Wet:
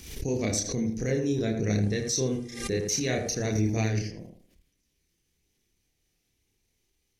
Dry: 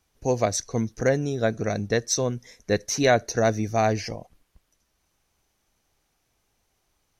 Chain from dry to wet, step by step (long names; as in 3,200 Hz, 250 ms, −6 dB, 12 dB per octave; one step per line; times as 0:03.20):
flat-topped bell 930 Hz −13 dB
output level in coarse steps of 16 dB
0:01.81–0:03.44: hum with harmonics 400 Hz, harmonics 28, −66 dBFS −1 dB per octave
multi-voice chorus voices 2, 0.54 Hz, delay 30 ms, depth 1.8 ms
on a send: tape delay 79 ms, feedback 37%, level −3.5 dB, low-pass 1,300 Hz
on the sum: background raised ahead of every attack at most 73 dB per second
level +7.5 dB